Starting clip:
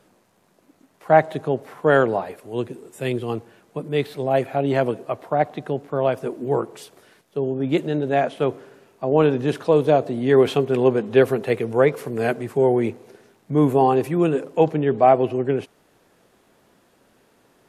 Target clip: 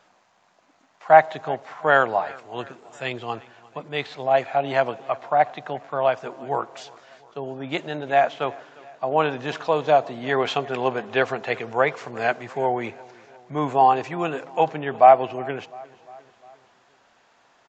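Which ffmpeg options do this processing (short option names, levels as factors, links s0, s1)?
-filter_complex "[0:a]firequalizer=gain_entry='entry(410,0);entry(710,14);entry(5500,11)':delay=0.05:min_phase=1,asplit=2[s0][s1];[s1]aecho=0:1:352|704|1056|1408:0.075|0.0427|0.0244|0.0139[s2];[s0][s2]amix=inputs=2:normalize=0,aresample=16000,aresample=44100,volume=0.316"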